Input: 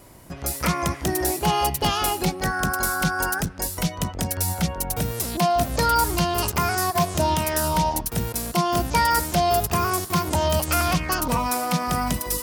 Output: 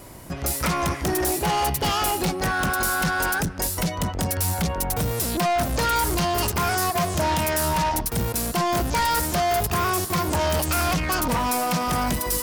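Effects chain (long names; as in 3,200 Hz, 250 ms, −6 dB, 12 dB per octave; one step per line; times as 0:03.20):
soft clipping −25 dBFS, distortion −8 dB
level +5.5 dB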